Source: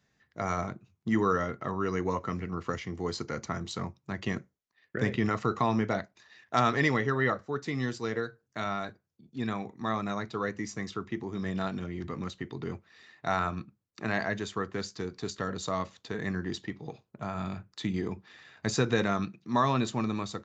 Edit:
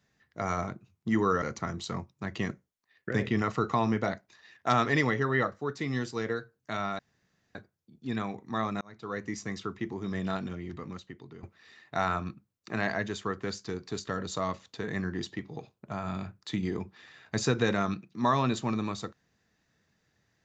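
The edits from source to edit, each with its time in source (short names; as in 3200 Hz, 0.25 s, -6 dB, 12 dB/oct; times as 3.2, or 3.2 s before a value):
1.42–3.29 cut
8.86 insert room tone 0.56 s
10.12–10.61 fade in
11.65–12.74 fade out, to -14.5 dB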